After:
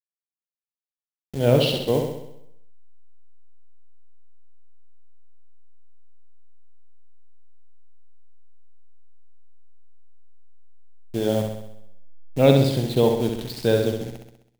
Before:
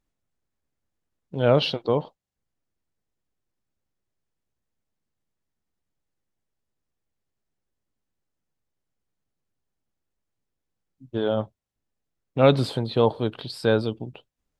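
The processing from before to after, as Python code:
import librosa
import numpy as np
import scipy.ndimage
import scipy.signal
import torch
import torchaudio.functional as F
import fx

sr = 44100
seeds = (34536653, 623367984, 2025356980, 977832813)

p1 = fx.delta_hold(x, sr, step_db=-33.0)
p2 = fx.peak_eq(p1, sr, hz=1200.0, db=-11.5, octaves=0.81)
p3 = p2 + fx.room_flutter(p2, sr, wall_m=11.2, rt60_s=0.78, dry=0)
y = p3 * librosa.db_to_amplitude(1.5)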